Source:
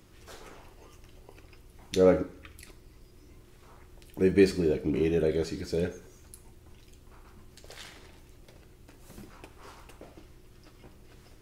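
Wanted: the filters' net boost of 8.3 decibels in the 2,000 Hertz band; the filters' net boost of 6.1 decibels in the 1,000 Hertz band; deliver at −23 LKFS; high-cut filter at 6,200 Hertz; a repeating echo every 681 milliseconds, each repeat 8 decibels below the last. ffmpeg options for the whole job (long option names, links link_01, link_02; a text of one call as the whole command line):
ffmpeg -i in.wav -af "lowpass=6200,equalizer=frequency=1000:width_type=o:gain=6,equalizer=frequency=2000:width_type=o:gain=8.5,aecho=1:1:681|1362|2043|2724|3405:0.398|0.159|0.0637|0.0255|0.0102,volume=4dB" out.wav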